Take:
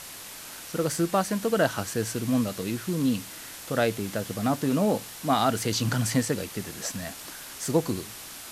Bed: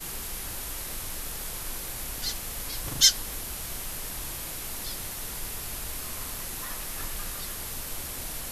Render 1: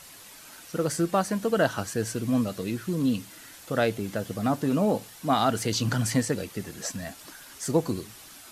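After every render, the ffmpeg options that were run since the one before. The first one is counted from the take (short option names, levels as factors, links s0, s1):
-af "afftdn=nr=8:nf=-42"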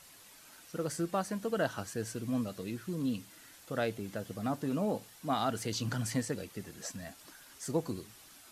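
-af "volume=0.376"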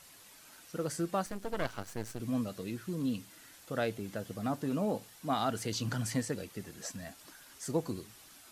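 -filter_complex "[0:a]asettb=1/sr,asplit=3[s0][s1][s2];[s0]atrim=end=1.264[s3];[s1]atrim=start=1.26:end=2.2,asetpts=PTS-STARTPTS,afade=t=in:d=0.004:c=qsin,afade=t=out:st=0.936:d=0.004:c=qsin,aeval=exprs='max(val(0),0)':c=same[s4];[s2]atrim=start=2.196[s5];[s3][s4]acrossfade=d=0.004:c1=hsin:c2=qsin[s6];[s6][s5]acrossfade=d=0.004:c1=qsin:c2=hsin"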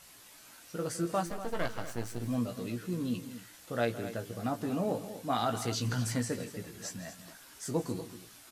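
-filter_complex "[0:a]asplit=2[s0][s1];[s1]adelay=17,volume=0.531[s2];[s0][s2]amix=inputs=2:normalize=0,aecho=1:1:162|239:0.168|0.224"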